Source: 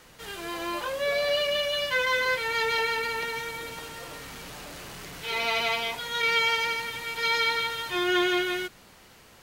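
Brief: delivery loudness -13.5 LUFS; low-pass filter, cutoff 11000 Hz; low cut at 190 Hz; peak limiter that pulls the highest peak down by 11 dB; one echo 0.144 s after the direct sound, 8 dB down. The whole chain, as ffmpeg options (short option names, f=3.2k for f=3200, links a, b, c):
-af "highpass=190,lowpass=11k,alimiter=limit=-24dB:level=0:latency=1,aecho=1:1:144:0.398,volume=17.5dB"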